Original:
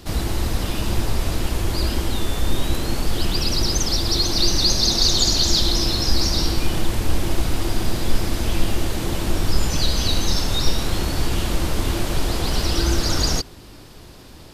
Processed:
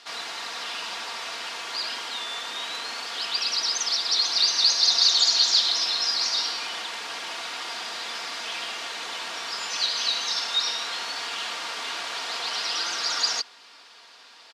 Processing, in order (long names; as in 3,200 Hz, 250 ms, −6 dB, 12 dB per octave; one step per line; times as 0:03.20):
flat-topped band-pass 2,400 Hz, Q 0.51
comb filter 4.3 ms, depth 46%